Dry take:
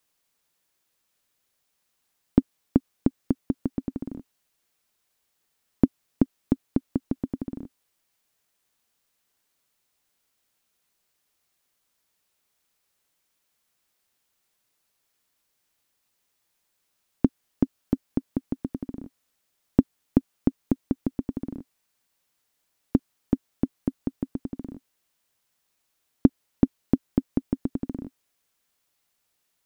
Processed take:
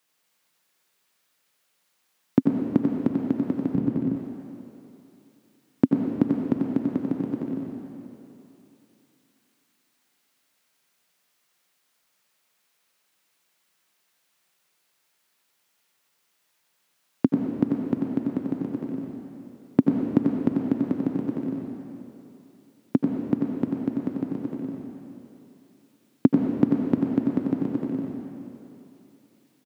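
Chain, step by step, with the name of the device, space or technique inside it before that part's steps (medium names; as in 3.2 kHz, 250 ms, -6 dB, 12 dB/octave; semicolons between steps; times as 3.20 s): PA in a hall (high-pass 120 Hz 24 dB/octave; peaking EQ 2 kHz +4 dB 2.3 oct; delay 92 ms -6 dB; reverberation RT60 3.0 s, pre-delay 76 ms, DRR 1 dB); 3.75–4.16 s: tone controls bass +9 dB, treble -3 dB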